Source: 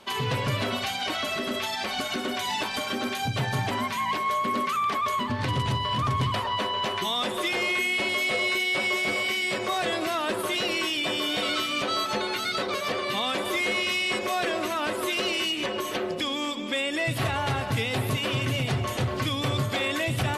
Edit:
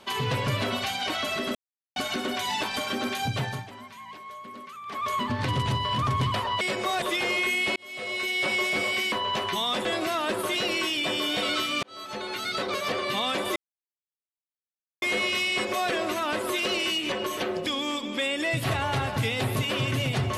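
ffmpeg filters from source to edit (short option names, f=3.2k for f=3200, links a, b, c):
-filter_complex "[0:a]asplit=12[a][b][c][d][e][f][g][h][i][j][k][l];[a]atrim=end=1.55,asetpts=PTS-STARTPTS,afade=t=out:st=1.546:d=0.004:c=hsin[m];[b]atrim=start=1.55:end=1.96,asetpts=PTS-STARTPTS,volume=0[n];[c]atrim=start=1.96:end=3.66,asetpts=PTS-STARTPTS,afade=t=in:d=0.004:c=hsin,afade=t=out:st=1.27:d=0.43:c=qsin:silence=0.16788[o];[d]atrim=start=3.66:end=4.85,asetpts=PTS-STARTPTS,volume=-15.5dB[p];[e]atrim=start=4.85:end=6.612,asetpts=PTS-STARTPTS,afade=t=in:d=0.43:c=qsin:silence=0.16788[q];[f]atrim=start=9.438:end=9.852[r];[g]atrim=start=7.338:end=8.08,asetpts=PTS-STARTPTS,afade=t=out:st=0.738:d=0.004:c=hsin[s];[h]atrim=start=8.08:end=9.442,asetpts=PTS-STARTPTS,afade=t=in:d=0.7[t];[i]atrim=start=6.608:end=7.342[u];[j]atrim=start=9.848:end=11.83,asetpts=PTS-STARTPTS,afade=t=out:st=1.978:d=0.004:c=hsin[v];[k]atrim=start=11.83:end=13.56,asetpts=PTS-STARTPTS,afade=t=in:d=1.13:c=qsin,afade=t=out:st=1.726:d=0.004:c=hsin,apad=pad_dur=1.46[w];[l]atrim=start=13.56,asetpts=PTS-STARTPTS,afade=t=in:d=0.004:c=hsin[x];[m][n][o][p][q]concat=n=5:v=0:a=1[y];[y][r]acrossfade=d=0.004:c1=hsin:c2=hsin[z];[s][t]concat=n=2:v=0:a=1[aa];[z][aa]acrossfade=d=0.004:c1=hsin:c2=hsin[ab];[ab][u]acrossfade=d=0.004:c1=hsin:c2=hsin[ac];[v][w][x]concat=n=3:v=0:a=1[ad];[ac][ad]acrossfade=d=0.004:c1=hsin:c2=hsin"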